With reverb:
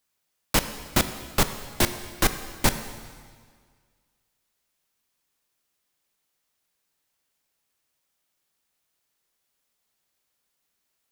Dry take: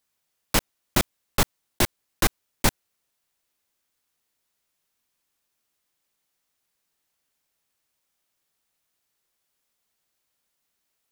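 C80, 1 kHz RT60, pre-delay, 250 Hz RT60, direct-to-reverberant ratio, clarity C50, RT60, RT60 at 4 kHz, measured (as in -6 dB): 12.0 dB, 1.8 s, 7 ms, 1.9 s, 9.5 dB, 11.0 dB, 1.8 s, 1.7 s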